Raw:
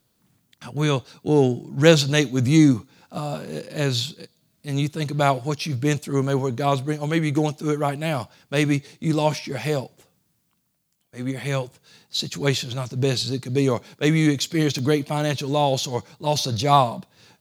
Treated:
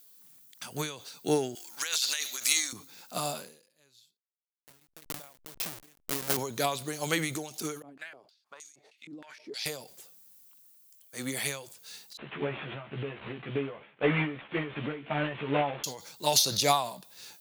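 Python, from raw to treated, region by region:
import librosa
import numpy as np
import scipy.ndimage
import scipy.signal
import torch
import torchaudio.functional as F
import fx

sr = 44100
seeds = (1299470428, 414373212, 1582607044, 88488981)

y = fx.chain(x, sr, fx.highpass(hz=1300.0, slope=12),
    fx.over_compress(threshold_db=-32.0, ratio=-1.0), at=(1.55, 2.73))
y = fx.chain(y, sr, fx.delta_hold(step_db=-20.5),
    fx.chopper(hz=4.7, depth_pct=65, duty_pct=60), at=(4.17, 6.37))
y = fx.chain(y, sr, fx.over_compress(threshold_db=-27.0, ratio=-1.0),
    fx.filter_held_bandpass(hz=6.4, low_hz=260.0, high_hz=6700.0), at=(7.82, 9.66))
y = fx.chain(y, sr, fx.cvsd(bps=16000),
    fx.air_absorb(metres=69.0),
    fx.doubler(ms=14.0, db=-2.0), at=(12.17, 15.84))
y = fx.riaa(y, sr, side='recording')
y = fx.end_taper(y, sr, db_per_s=100.0)
y = y * 10.0 ** (-1.5 / 20.0)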